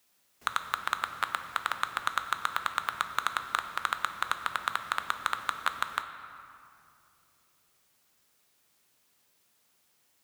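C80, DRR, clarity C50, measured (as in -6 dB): 10.0 dB, 7.5 dB, 9.0 dB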